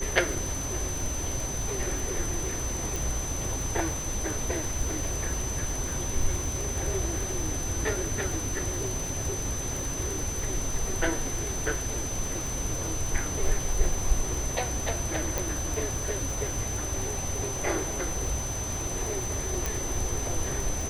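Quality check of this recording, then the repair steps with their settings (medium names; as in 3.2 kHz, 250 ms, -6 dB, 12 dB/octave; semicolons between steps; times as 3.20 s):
crackle 53 per s -33 dBFS
whine 6.1 kHz -34 dBFS
2.96 s: pop
15.38 s: pop
19.66 s: pop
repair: de-click; band-stop 6.1 kHz, Q 30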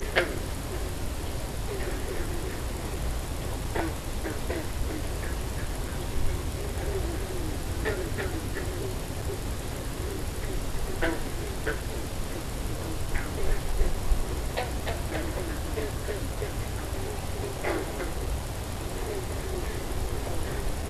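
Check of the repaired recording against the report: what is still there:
15.38 s: pop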